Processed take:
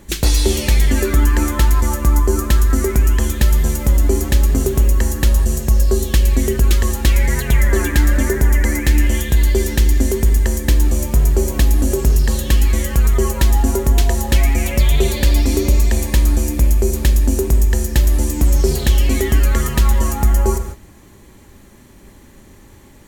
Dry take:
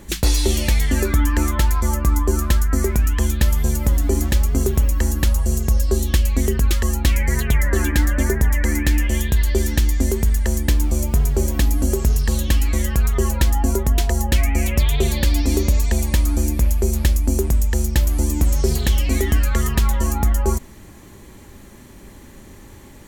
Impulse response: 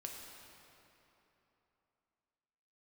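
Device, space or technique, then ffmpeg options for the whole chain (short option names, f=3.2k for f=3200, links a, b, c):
keyed gated reverb: -filter_complex "[0:a]asplit=3[a][b][c];[1:a]atrim=start_sample=2205[d];[b][d]afir=irnorm=-1:irlink=0[e];[c]apad=whole_len=1017808[f];[e][f]sidechaingate=range=-33dB:threshold=-36dB:ratio=16:detection=peak,volume=1.5dB[g];[a][g]amix=inputs=2:normalize=0,volume=-2dB"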